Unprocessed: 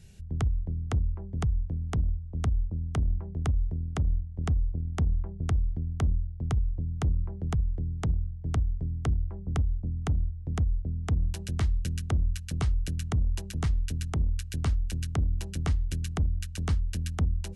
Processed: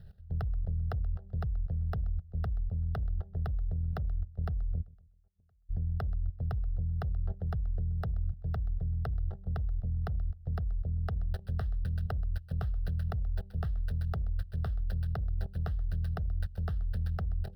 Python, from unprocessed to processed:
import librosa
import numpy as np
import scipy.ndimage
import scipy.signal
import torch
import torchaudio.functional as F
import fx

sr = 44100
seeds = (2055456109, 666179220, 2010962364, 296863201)

p1 = scipy.signal.medfilt(x, 15)
p2 = fx.level_steps(p1, sr, step_db=18)
p3 = fx.fixed_phaser(p2, sr, hz=1500.0, stages=8)
p4 = fx.gate_flip(p3, sr, shuts_db=-47.0, range_db=-37, at=(4.81, 5.69), fade=0.02)
p5 = p4 + fx.echo_feedback(p4, sr, ms=129, feedback_pct=38, wet_db=-20.5, dry=0)
y = F.gain(torch.from_numpy(p5), 6.0).numpy()